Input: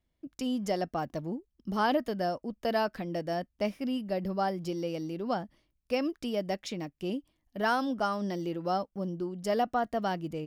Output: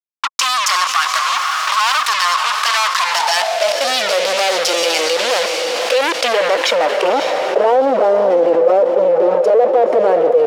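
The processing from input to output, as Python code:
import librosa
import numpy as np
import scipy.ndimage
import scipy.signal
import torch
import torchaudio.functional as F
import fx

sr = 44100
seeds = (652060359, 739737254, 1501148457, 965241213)

p1 = fx.rider(x, sr, range_db=4, speed_s=2.0)
p2 = fx.env_flanger(p1, sr, rest_ms=4.2, full_db=-24.0)
p3 = fx.fuzz(p2, sr, gain_db=53.0, gate_db=-48.0)
p4 = fx.filter_sweep_bandpass(p3, sr, from_hz=4200.0, to_hz=510.0, start_s=5.66, end_s=7.86, q=0.88)
p5 = p4 + fx.echo_diffused(p4, sr, ms=537, feedback_pct=44, wet_db=-11, dry=0)
p6 = fx.quant_companded(p5, sr, bits=6, at=(1.34, 2.07))
p7 = fx.filter_sweep_highpass(p6, sr, from_hz=1100.0, to_hz=500.0, start_s=2.94, end_s=3.96, q=7.7)
p8 = fx.env_flatten(p7, sr, amount_pct=70)
y = F.gain(torch.from_numpy(p8), -7.5).numpy()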